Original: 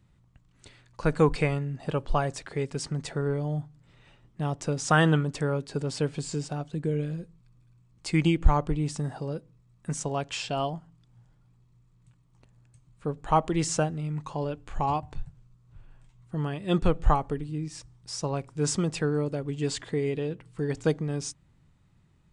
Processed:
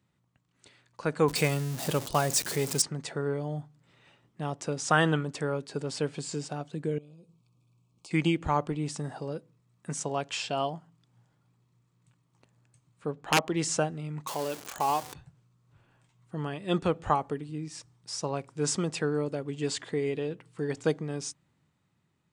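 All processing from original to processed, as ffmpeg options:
ffmpeg -i in.wav -filter_complex "[0:a]asettb=1/sr,asplit=3[link_01][link_02][link_03];[link_01]atrim=end=1.284[link_04];[link_02]atrim=start=1.28:end=2.82,asetpts=PTS-STARTPTS,afade=type=in:duration=0.004:curve=qsin,afade=type=out:start_time=1.536:duration=0.004:curve=qsin,aeval=exprs='val(0)+0.5*0.0168*sgn(val(0))':channel_layout=same,bass=frequency=250:gain=4,treble=frequency=4000:gain=13[link_05];[link_03]atrim=start=2.816[link_06];[link_04][link_05]acrossfade=duration=0.004:curve1=hsin:curve2=qsin[link_07];[link_07][link_06]acrossfade=duration=0.004:curve1=qsin:curve2=hsin,asettb=1/sr,asplit=3[link_08][link_09][link_10];[link_08]atrim=end=6.984[link_11];[link_09]atrim=start=6.98:end=8.11,asetpts=PTS-STARTPTS,afade=type=in:duration=0.004:curve=qsin,afade=type=out:start_time=1.126:duration=0.004:curve=qsin,acompressor=threshold=-47dB:ratio=5:attack=3.2:release=140:knee=1:detection=peak,asuperstop=centerf=1800:order=12:qfactor=2.3,equalizer=frequency=1400:width_type=o:width=0.21:gain=-11[link_12];[link_10]atrim=start=8.106[link_13];[link_11][link_12]acrossfade=duration=0.004:curve1=hsin:curve2=qsin[link_14];[link_14][link_13]acrossfade=duration=0.004:curve1=qsin:curve2=hsin,asettb=1/sr,asplit=3[link_15][link_16][link_17];[link_15]atrim=end=13.114[link_18];[link_16]atrim=start=13.11:end=13.6,asetpts=PTS-STARTPTS,afade=type=in:duration=0.004:curve=qsin,afade=type=out:start_time=0.486:duration=0.004:curve=qsin,aeval=exprs='(mod(4.73*val(0)+1,2)-1)/4.73':channel_layout=same,adynamicsmooth=sensitivity=7:basefreq=6300[link_19];[link_17]atrim=start=13.596[link_20];[link_18][link_19]acrossfade=duration=0.004:curve1=hsin:curve2=qsin[link_21];[link_21][link_20]acrossfade=duration=0.004:curve1=qsin:curve2=hsin,asettb=1/sr,asplit=3[link_22][link_23][link_24];[link_22]atrim=end=14.274[link_25];[link_23]atrim=start=14.27:end=15.14,asetpts=PTS-STARTPTS,afade=type=in:duration=0.004:curve=qsin,afade=type=out:start_time=0.866:duration=0.004:curve=qsin,aeval=exprs='val(0)+0.5*0.015*sgn(val(0))':channel_layout=same,bass=frequency=250:gain=-9,treble=frequency=4000:gain=11[link_26];[link_24]atrim=start=15.136[link_27];[link_25][link_26]acrossfade=duration=0.004:curve1=hsin:curve2=qsin[link_28];[link_28][link_27]acrossfade=duration=0.004:curve1=qsin:curve2=hsin,highpass=97,lowshelf=frequency=150:gain=-9,dynaudnorm=framelen=200:gausssize=11:maxgain=4.5dB,volume=-4.5dB" out.wav

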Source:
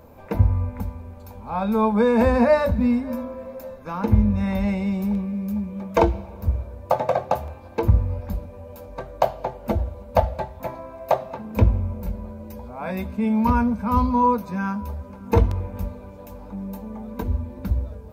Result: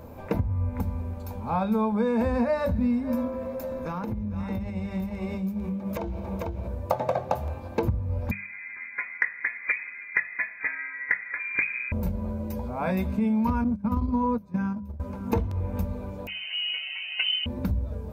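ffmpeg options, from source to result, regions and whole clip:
ffmpeg -i in.wav -filter_complex "[0:a]asettb=1/sr,asplit=3[link_01][link_02][link_03];[link_01]atrim=end=3.274[link_04];[link_02]atrim=start=3.27:end=6.68,asetpts=PTS-STARTPTS,afade=type=in:duration=0.004:curve=qsin,afade=type=out:start_time=3.406:duration=0.004:curve=qsin,aecho=1:1:448:0.562,atrim=end_sample=150381,acompressor=threshold=-31dB:ratio=16:attack=3.2:release=140:knee=1:detection=peak[link_05];[link_03]atrim=start=6.676[link_06];[link_04][link_05]acrossfade=duration=0.004:curve1=hsin:curve2=qsin[link_07];[link_07][link_06]acrossfade=duration=0.004:curve1=qsin:curve2=hsin,asettb=1/sr,asplit=3[link_08][link_09][link_10];[link_08]atrim=end=8.314[link_11];[link_09]atrim=start=8.31:end=11.92,asetpts=PTS-STARTPTS,afade=type=in:duration=0.004:curve=qsin,afade=type=out:start_time=3.606:duration=0.004:curve=qsin,highpass=frequency=140:width=0.5412,highpass=frequency=140:width=1.3066,lowpass=frequency=2200:width_type=q:width=0.5098,lowpass=frequency=2200:width_type=q:width=0.6013,lowpass=frequency=2200:width_type=q:width=0.9,lowpass=frequency=2200:width_type=q:width=2.563,afreqshift=-2600[link_12];[link_10]atrim=start=11.916[link_13];[link_11][link_12]acrossfade=duration=0.004:curve1=hsin:curve2=qsin[link_14];[link_14][link_13]acrossfade=duration=0.004:curve1=qsin:curve2=hsin,asettb=1/sr,asplit=3[link_15][link_16][link_17];[link_15]atrim=end=13.644[link_18];[link_16]atrim=start=13.64:end=15,asetpts=PTS-STARTPTS,afade=type=in:duration=0.004:curve=qsin,afade=type=out:start_time=1.356:duration=0.004:curve=qsin,lowshelf=frequency=360:gain=9,acompressor=threshold=-15dB:ratio=5:attack=3.2:release=140:knee=1:detection=peak,agate=range=-25dB:threshold=-19dB:ratio=16:release=100:detection=peak[link_19];[link_17]atrim=start=14.996[link_20];[link_18][link_19]acrossfade=duration=0.004:curve1=hsin:curve2=qsin[link_21];[link_21][link_20]acrossfade=duration=0.004:curve1=qsin:curve2=hsin,asettb=1/sr,asplit=3[link_22][link_23][link_24];[link_22]atrim=end=16.274[link_25];[link_23]atrim=start=16.27:end=17.46,asetpts=PTS-STARTPTS,afade=type=in:duration=0.004:curve=qsin,afade=type=out:start_time=1.186:duration=0.004:curve=qsin,aecho=1:1:6.9:0.88,atrim=end_sample=52479,lowpass=frequency=2600:width_type=q:width=0.5098,lowpass=frequency=2600:width_type=q:width=0.6013,lowpass=frequency=2600:width_type=q:width=0.9,lowpass=frequency=2600:width_type=q:width=2.563,afreqshift=-3100[link_26];[link_24]atrim=start=17.456[link_27];[link_25][link_26]acrossfade=duration=0.004:curve1=hsin:curve2=qsin[link_28];[link_28][link_27]acrossfade=duration=0.004:curve1=qsin:curve2=hsin,equalizer=frequency=130:width_type=o:width=2.4:gain=5,acompressor=threshold=-24dB:ratio=6,bandreject=frequency=50:width_type=h:width=6,bandreject=frequency=100:width_type=h:width=6,bandreject=frequency=150:width_type=h:width=6,bandreject=frequency=200:width_type=h:width=6,volume=2dB" out.wav

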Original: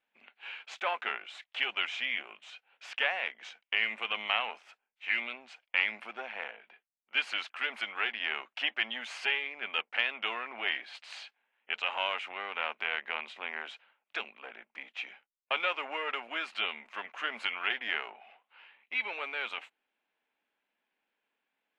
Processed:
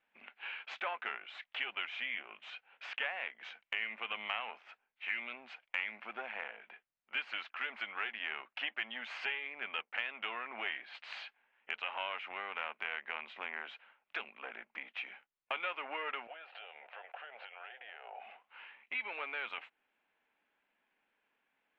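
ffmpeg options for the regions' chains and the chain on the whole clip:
ffmpeg -i in.wav -filter_complex "[0:a]asettb=1/sr,asplit=3[link_01][link_02][link_03];[link_01]atrim=end=16.274[link_04];[link_02]atrim=start=16.27:end=18.2,asetpts=PTS-STARTPTS,afade=type=in:duration=0.004:curve=qsin,afade=type=out:start_time=1.926:duration=0.004:curve=qsin,acompressor=threshold=-47dB:ratio=8:attack=3.2:release=140:knee=1:detection=peak,highpass=frequency=450:width=0.5412,highpass=frequency=450:width=1.3066,equalizer=frequency=520:width_type=q:width=4:gain=8,equalizer=frequency=740:width_type=q:width=4:gain=9,equalizer=frequency=1100:width_type=q:width=4:gain=-9,equalizer=frequency=2100:width_type=q:width=4:gain=-6,lowpass=frequency=3500:width=0.5412,lowpass=frequency=3500:width=1.3066[link_05];[link_03]atrim=start=18.196[link_06];[link_04][link_05]acrossfade=duration=0.004:curve1=hsin:curve2=qsin[link_07];[link_07][link_06]acrossfade=duration=0.004:curve1=qsin:curve2=hsin,lowpass=2500,equalizer=frequency=430:width=0.43:gain=-4,acompressor=threshold=-49dB:ratio=2,volume=6.5dB" out.wav

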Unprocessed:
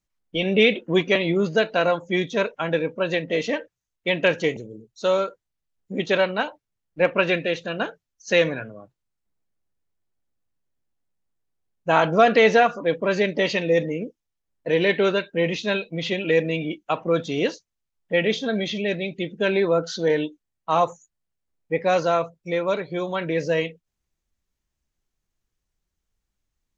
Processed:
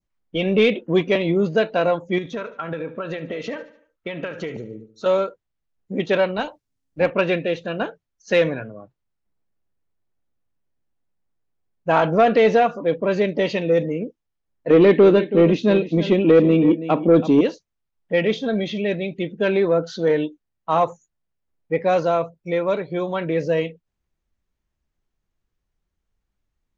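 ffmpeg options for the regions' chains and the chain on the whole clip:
ffmpeg -i in.wav -filter_complex "[0:a]asettb=1/sr,asplit=3[link_01][link_02][link_03];[link_01]atrim=end=2.184[link_04];[link_02]atrim=start=2.18:end=5.06,asetpts=PTS-STARTPTS,afade=type=in:duration=0.004:curve=qsin,afade=type=out:start_time=2.876:duration=0.004:curve=qsin,equalizer=frequency=1300:width_type=o:width=0.31:gain=12,acompressor=threshold=-26dB:ratio=12:attack=3.2:release=140:knee=1:detection=peak,aecho=1:1:73|146|219|292:0.15|0.0748|0.0374|0.0187,atrim=end_sample=127008[link_05];[link_03]atrim=start=5.056[link_06];[link_04][link_05]acrossfade=duration=0.004:curve1=hsin:curve2=qsin[link_07];[link_07][link_06]acrossfade=duration=0.004:curve1=qsin:curve2=hsin,asettb=1/sr,asplit=3[link_08][link_09][link_10];[link_08]atrim=end=6.364[link_11];[link_09]atrim=start=6.36:end=7.11,asetpts=PTS-STARTPTS,afade=type=in:duration=0.004:curve=qsin,afade=type=out:start_time=0.746:duration=0.004:curve=qsin,bass=frequency=250:gain=3,treble=frequency=4000:gain=12,tremolo=f=270:d=0.333[link_12];[link_10]atrim=start=7.106[link_13];[link_11][link_12]acrossfade=duration=0.004:curve1=hsin:curve2=qsin[link_14];[link_14][link_13]acrossfade=duration=0.004:curve1=qsin:curve2=hsin,asettb=1/sr,asplit=3[link_15][link_16][link_17];[link_15]atrim=end=14.704[link_18];[link_16]atrim=start=14.7:end=17.41,asetpts=PTS-STARTPTS,afade=type=in:duration=0.004:curve=qsin,afade=type=out:start_time=2.706:duration=0.004:curve=qsin,equalizer=frequency=280:width_type=o:width=1.5:gain=12.5,aecho=1:1:327:0.188,atrim=end_sample=119511[link_19];[link_17]atrim=start=17.406[link_20];[link_18][link_19]acrossfade=duration=0.004:curve1=hsin:curve2=qsin[link_21];[link_21][link_20]acrossfade=duration=0.004:curve1=qsin:curve2=hsin,lowpass=frequency=2200:poles=1,adynamicequalizer=threshold=0.0126:dfrequency=1600:dqfactor=1.1:tfrequency=1600:tqfactor=1.1:attack=5:release=100:ratio=0.375:range=3.5:mode=cutabove:tftype=bell,acontrast=66,volume=-3.5dB" out.wav

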